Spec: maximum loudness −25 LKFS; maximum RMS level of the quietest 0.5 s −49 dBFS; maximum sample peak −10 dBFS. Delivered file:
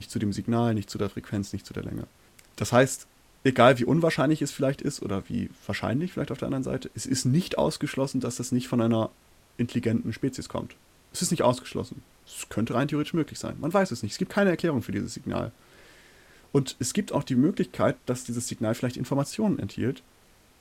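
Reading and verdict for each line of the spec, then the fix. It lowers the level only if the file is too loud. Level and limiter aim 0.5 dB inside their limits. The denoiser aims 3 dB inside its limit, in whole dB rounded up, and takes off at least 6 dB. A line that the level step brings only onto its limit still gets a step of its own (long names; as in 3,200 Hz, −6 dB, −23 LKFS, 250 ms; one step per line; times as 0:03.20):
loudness −27.5 LKFS: in spec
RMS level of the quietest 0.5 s −58 dBFS: in spec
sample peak −6.0 dBFS: out of spec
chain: brickwall limiter −10.5 dBFS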